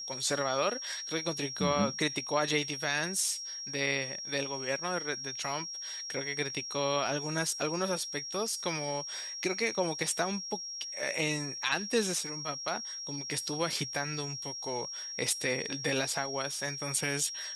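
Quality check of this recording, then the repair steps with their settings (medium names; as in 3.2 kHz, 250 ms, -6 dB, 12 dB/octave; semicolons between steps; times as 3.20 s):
whine 5.6 kHz -38 dBFS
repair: band-stop 5.6 kHz, Q 30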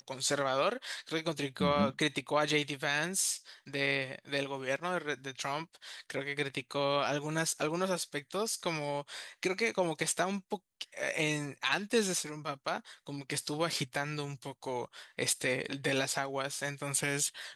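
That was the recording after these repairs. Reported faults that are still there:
nothing left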